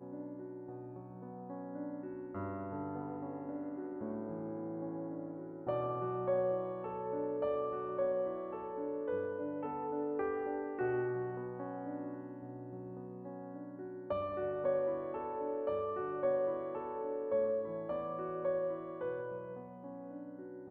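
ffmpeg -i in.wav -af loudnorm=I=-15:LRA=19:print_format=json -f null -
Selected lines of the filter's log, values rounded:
"input_i" : "-39.3",
"input_tp" : "-23.4",
"input_lra" : "6.4",
"input_thresh" : "-49.3",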